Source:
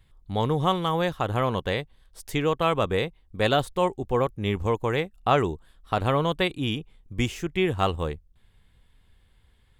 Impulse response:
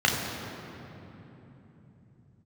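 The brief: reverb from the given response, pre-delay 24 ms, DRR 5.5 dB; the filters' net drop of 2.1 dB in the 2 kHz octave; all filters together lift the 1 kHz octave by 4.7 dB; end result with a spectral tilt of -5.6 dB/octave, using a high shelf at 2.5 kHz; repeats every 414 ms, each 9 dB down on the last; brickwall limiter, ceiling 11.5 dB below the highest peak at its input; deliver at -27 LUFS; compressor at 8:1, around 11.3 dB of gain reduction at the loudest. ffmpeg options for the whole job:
-filter_complex "[0:a]equalizer=f=1000:t=o:g=7,equalizer=f=2000:t=o:g=-9,highshelf=f=2500:g=8,acompressor=threshold=0.0562:ratio=8,alimiter=limit=0.075:level=0:latency=1,aecho=1:1:414|828|1242|1656:0.355|0.124|0.0435|0.0152,asplit=2[s0][s1];[1:a]atrim=start_sample=2205,adelay=24[s2];[s1][s2]afir=irnorm=-1:irlink=0,volume=0.0794[s3];[s0][s3]amix=inputs=2:normalize=0,volume=2"

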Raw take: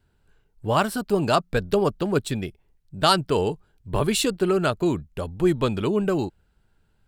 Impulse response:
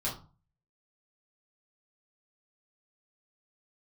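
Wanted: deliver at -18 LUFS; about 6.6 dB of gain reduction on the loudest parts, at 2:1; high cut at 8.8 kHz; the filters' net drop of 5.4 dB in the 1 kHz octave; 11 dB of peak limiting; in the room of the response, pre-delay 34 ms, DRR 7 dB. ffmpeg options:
-filter_complex "[0:a]lowpass=8800,equalizer=f=1000:t=o:g=-7.5,acompressor=threshold=0.0355:ratio=2,alimiter=level_in=1.06:limit=0.0631:level=0:latency=1,volume=0.944,asplit=2[s0][s1];[1:a]atrim=start_sample=2205,adelay=34[s2];[s1][s2]afir=irnorm=-1:irlink=0,volume=0.266[s3];[s0][s3]amix=inputs=2:normalize=0,volume=5.96"

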